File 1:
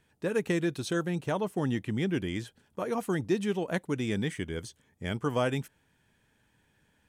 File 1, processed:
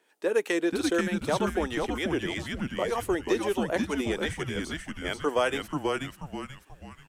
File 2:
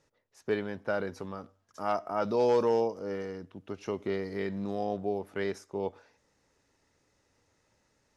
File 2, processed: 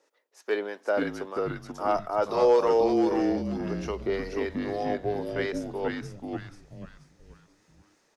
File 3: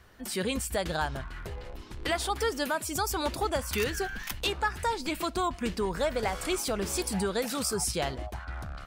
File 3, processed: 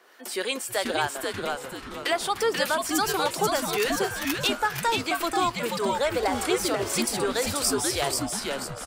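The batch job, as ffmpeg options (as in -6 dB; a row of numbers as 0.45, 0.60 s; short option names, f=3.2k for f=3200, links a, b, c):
-filter_complex "[0:a]highpass=f=330:w=0.5412,highpass=f=330:w=1.3066,acrossover=split=910[a][b];[a]aeval=exprs='val(0)*(1-0.5/2+0.5/2*cos(2*PI*3.2*n/s))':c=same[c];[b]aeval=exprs='val(0)*(1-0.5/2-0.5/2*cos(2*PI*3.2*n/s))':c=same[d];[c][d]amix=inputs=2:normalize=0,asplit=2[e][f];[f]asplit=5[g][h][i][j][k];[g]adelay=485,afreqshift=-140,volume=-3.5dB[l];[h]adelay=970,afreqshift=-280,volume=-11.7dB[m];[i]adelay=1455,afreqshift=-420,volume=-19.9dB[n];[j]adelay=1940,afreqshift=-560,volume=-28dB[o];[k]adelay=2425,afreqshift=-700,volume=-36.2dB[p];[l][m][n][o][p]amix=inputs=5:normalize=0[q];[e][q]amix=inputs=2:normalize=0,volume=6.5dB"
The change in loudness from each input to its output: +2.5, +4.5, +5.0 LU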